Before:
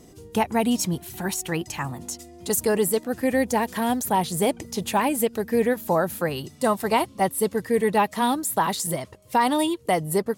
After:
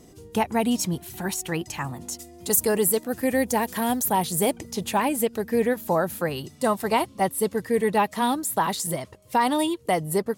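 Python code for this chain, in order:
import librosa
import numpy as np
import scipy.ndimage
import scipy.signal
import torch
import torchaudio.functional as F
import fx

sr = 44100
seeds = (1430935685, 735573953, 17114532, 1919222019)

y = fx.high_shelf(x, sr, hz=10000.0, db=10.0, at=(2.12, 4.58))
y = y * librosa.db_to_amplitude(-1.0)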